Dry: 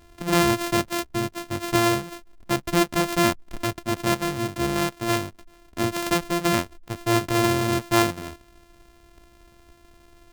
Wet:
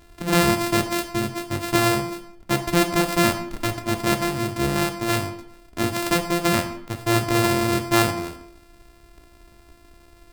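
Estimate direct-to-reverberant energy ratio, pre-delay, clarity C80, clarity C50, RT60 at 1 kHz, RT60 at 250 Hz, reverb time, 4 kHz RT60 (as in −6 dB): 5.5 dB, 8 ms, 13.5 dB, 10.0 dB, 0.70 s, 0.65 s, 0.75 s, 0.50 s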